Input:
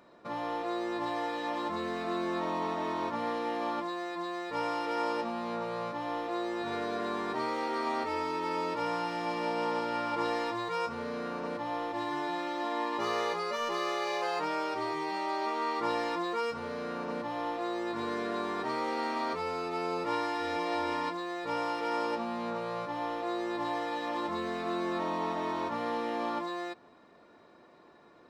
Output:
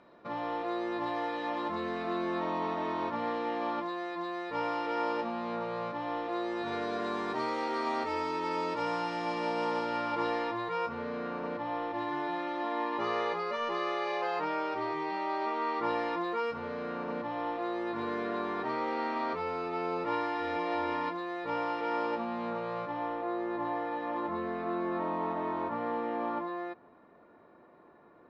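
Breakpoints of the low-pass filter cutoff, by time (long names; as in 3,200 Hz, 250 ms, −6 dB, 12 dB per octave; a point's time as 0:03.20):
0:06.23 3,900 Hz
0:07.10 7,300 Hz
0:09.71 7,300 Hz
0:10.58 3,100 Hz
0:22.80 3,100 Hz
0:23.25 1,800 Hz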